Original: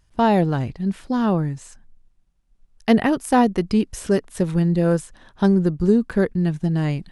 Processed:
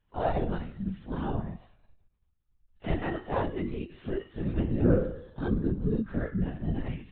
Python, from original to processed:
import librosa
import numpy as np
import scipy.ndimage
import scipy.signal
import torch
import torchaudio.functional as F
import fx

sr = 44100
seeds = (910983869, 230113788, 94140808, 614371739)

y = fx.phase_scramble(x, sr, seeds[0], window_ms=100)
y = fx.comb_fb(y, sr, f0_hz=170.0, decay_s=0.72, harmonics='all', damping=0.0, mix_pct=80)
y = fx.lpc_vocoder(y, sr, seeds[1], excitation='whisper', order=16)